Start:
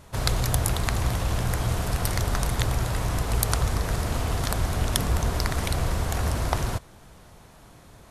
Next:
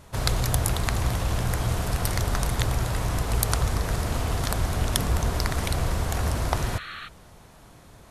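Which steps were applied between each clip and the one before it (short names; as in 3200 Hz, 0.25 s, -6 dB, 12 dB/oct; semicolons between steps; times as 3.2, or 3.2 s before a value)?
spectral repair 6.61–7.05, 1100–4400 Hz before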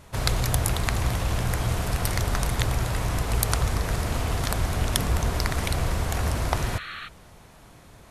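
bell 2300 Hz +2.5 dB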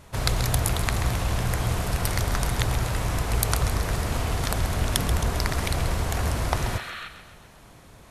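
thinning echo 0.133 s, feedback 53%, high-pass 360 Hz, level -10.5 dB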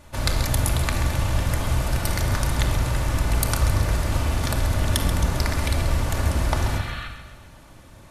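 shoebox room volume 3100 m³, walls furnished, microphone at 2.5 m; gain -1 dB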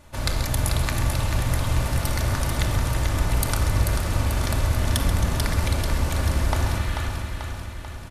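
feedback echo 0.439 s, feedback 59%, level -6 dB; gain -2 dB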